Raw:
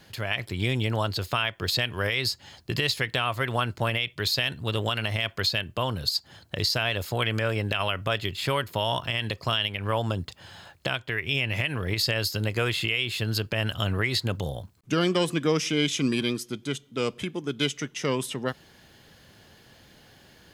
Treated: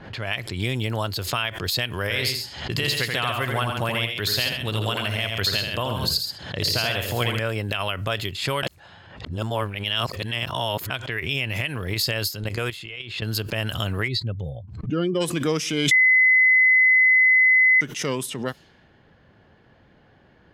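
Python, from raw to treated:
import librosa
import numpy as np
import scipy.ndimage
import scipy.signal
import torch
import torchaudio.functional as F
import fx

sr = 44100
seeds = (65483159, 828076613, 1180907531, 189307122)

y = fx.echo_multitap(x, sr, ms=(84, 137, 210), db=(-5.0, -7.5, -18.0), at=(2.02, 7.39))
y = fx.level_steps(y, sr, step_db=13, at=(12.32, 13.22))
y = fx.spec_expand(y, sr, power=1.7, at=(14.07, 15.2), fade=0.02)
y = fx.edit(y, sr, fx.reverse_span(start_s=8.63, length_s=2.27),
    fx.bleep(start_s=15.91, length_s=1.9, hz=2030.0, db=-13.0), tone=tone)
y = fx.env_lowpass(y, sr, base_hz=1500.0, full_db=-25.0)
y = fx.high_shelf(y, sr, hz=11000.0, db=10.5)
y = fx.pre_swell(y, sr, db_per_s=76.0)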